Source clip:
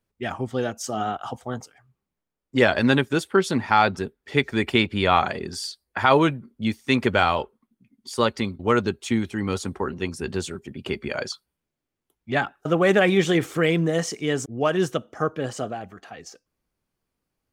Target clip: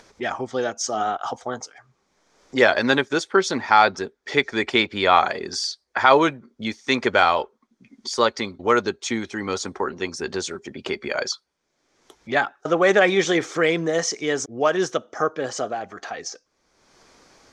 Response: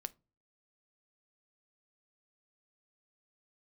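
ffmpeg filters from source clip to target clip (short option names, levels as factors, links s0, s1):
-filter_complex "[0:a]lowpass=f=6100:t=q:w=3.1,equalizer=f=2800:t=o:w=0.22:g=-7.5,asplit=2[s0][s1];[s1]acompressor=mode=upward:threshold=0.0891:ratio=2.5,volume=1.19[s2];[s0][s2]amix=inputs=2:normalize=0,bass=f=250:g=-14,treble=f=4000:g=-6,volume=0.668"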